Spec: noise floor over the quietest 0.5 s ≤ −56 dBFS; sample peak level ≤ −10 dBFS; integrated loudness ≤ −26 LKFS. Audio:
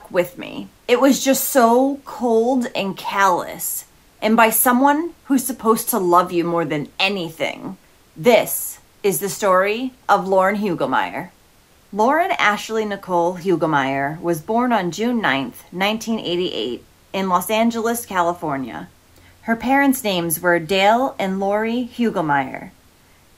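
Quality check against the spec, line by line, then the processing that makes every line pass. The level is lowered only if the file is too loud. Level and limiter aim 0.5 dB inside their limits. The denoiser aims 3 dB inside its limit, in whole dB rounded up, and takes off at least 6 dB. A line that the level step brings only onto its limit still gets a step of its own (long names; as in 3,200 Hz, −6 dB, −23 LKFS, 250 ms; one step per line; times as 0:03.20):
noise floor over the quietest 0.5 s −52 dBFS: out of spec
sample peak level −2.0 dBFS: out of spec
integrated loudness −18.5 LKFS: out of spec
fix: level −8 dB
brickwall limiter −10.5 dBFS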